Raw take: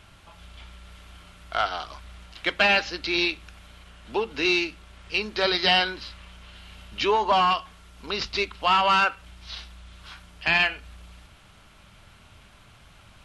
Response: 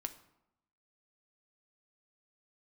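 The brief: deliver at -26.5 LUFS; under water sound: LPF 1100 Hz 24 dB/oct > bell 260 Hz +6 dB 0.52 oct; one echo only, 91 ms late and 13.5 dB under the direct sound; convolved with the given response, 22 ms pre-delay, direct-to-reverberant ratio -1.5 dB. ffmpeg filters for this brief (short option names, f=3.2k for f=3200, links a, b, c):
-filter_complex "[0:a]aecho=1:1:91:0.211,asplit=2[a][b];[1:a]atrim=start_sample=2205,adelay=22[c];[b][c]afir=irnorm=-1:irlink=0,volume=3dB[d];[a][d]amix=inputs=2:normalize=0,lowpass=f=1.1k:w=0.5412,lowpass=f=1.1k:w=1.3066,equalizer=f=260:t=o:w=0.52:g=6,volume=-2.5dB"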